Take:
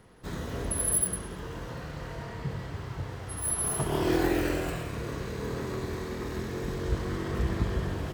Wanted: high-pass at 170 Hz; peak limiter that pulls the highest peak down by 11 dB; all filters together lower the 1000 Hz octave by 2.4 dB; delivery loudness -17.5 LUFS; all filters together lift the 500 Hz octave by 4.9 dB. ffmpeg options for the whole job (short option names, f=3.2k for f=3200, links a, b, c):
-af "highpass=170,equalizer=f=500:t=o:g=8,equalizer=f=1k:t=o:g=-6.5,volume=16dB,alimiter=limit=-7.5dB:level=0:latency=1"